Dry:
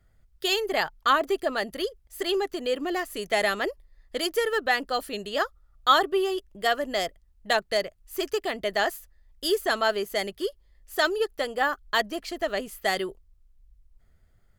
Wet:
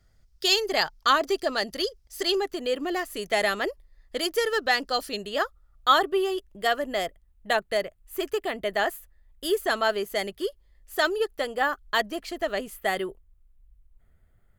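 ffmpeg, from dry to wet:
-af "asetnsamples=n=441:p=0,asendcmd='2.35 equalizer g 1;4.38 equalizer g 9;5.16 equalizer g -2;6.84 equalizer g -8.5;9.57 equalizer g -2.5;12.77 equalizer g -13',equalizer=f=5.3k:t=o:w=0.77:g=11.5"

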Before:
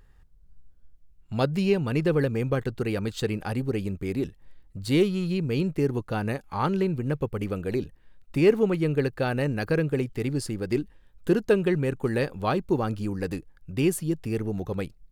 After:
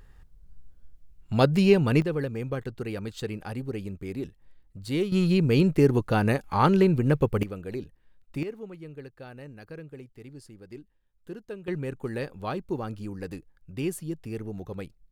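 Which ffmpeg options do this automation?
-af "asetnsamples=n=441:p=0,asendcmd='2.02 volume volume -5.5dB;5.12 volume volume 5dB;7.43 volume volume -6.5dB;8.43 volume volume -17.5dB;11.68 volume volume -6.5dB',volume=4dB"

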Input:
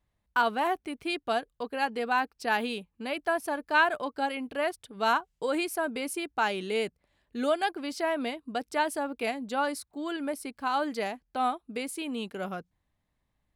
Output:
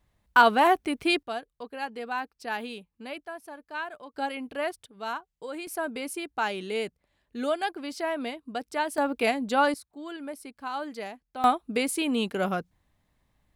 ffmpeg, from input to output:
-af "asetnsamples=n=441:p=0,asendcmd='1.23 volume volume -5dB;3.23 volume volume -11.5dB;4.14 volume volume -1dB;4.86 volume volume -8dB;5.67 volume volume -1dB;8.98 volume volume 6dB;9.74 volume volume -5dB;11.44 volume volume 7.5dB',volume=7.5dB"

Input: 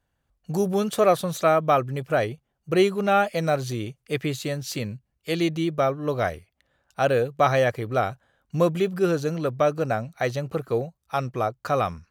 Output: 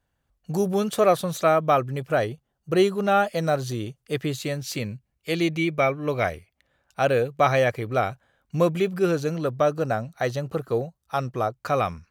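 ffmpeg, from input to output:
-af "asetnsamples=n=441:p=0,asendcmd='2.18 equalizer g -6;4.38 equalizer g 3.5;5.53 equalizer g 14;6.24 equalizer g 4;9.36 equalizer g -5;11.56 equalizer g 4',equalizer=f=2.3k:t=o:w=0.26:g=0"

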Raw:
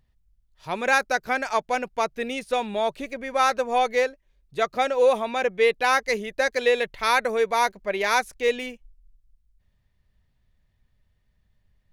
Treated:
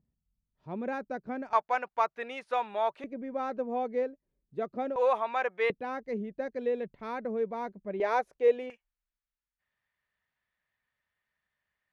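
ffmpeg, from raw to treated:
-af "asetnsamples=n=441:p=0,asendcmd='1.53 bandpass f 1100;3.04 bandpass f 250;4.96 bandpass f 1100;5.7 bandpass f 210;8 bandpass f 530;8.7 bandpass f 1600',bandpass=f=220:t=q:w=1.4:csg=0"

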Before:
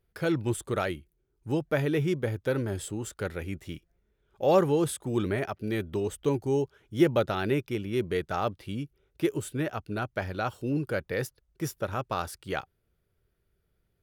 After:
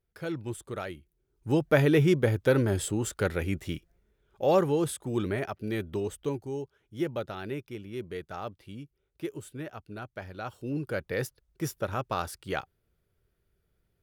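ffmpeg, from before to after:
-af "volume=13.5dB,afade=t=in:st=0.94:d=0.82:silence=0.251189,afade=t=out:st=3.66:d=0.9:silence=0.473151,afade=t=out:st=6:d=0.51:silence=0.446684,afade=t=in:st=10.34:d=0.9:silence=0.375837"

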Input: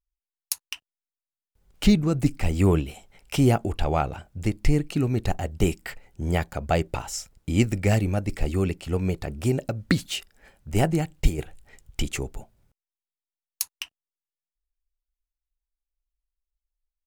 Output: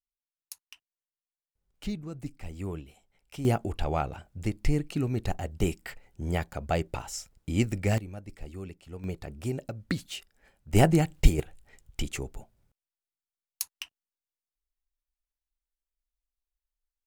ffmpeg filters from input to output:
-af "asetnsamples=n=441:p=0,asendcmd='3.45 volume volume -5dB;7.98 volume volume -16dB;9.04 volume volume -8.5dB;10.73 volume volume 1.5dB;11.4 volume volume -5dB',volume=-16dB"

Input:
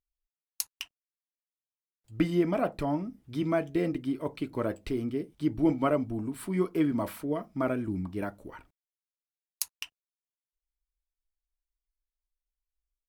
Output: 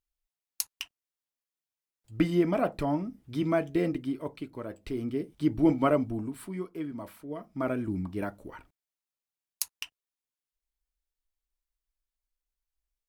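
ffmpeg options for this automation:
-af "volume=22dB,afade=t=out:st=3.85:d=0.8:silence=0.316228,afade=t=in:st=4.65:d=0.65:silence=0.281838,afade=t=out:st=6:d=0.64:silence=0.266073,afade=t=in:st=7.24:d=0.58:silence=0.316228"

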